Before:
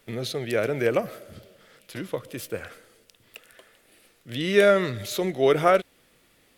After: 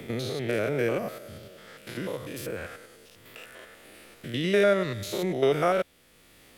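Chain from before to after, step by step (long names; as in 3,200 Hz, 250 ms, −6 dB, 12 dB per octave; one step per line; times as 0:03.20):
spectrum averaged block by block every 100 ms
multiband upward and downward compressor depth 40%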